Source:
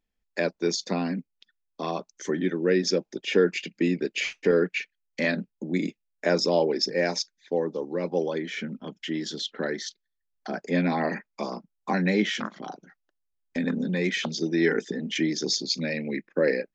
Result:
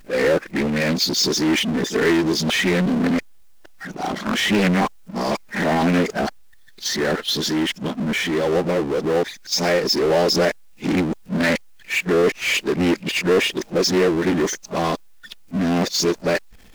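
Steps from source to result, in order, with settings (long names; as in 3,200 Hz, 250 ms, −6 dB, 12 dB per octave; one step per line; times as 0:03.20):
played backwards from end to start
power curve on the samples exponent 0.5
highs frequency-modulated by the lows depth 0.26 ms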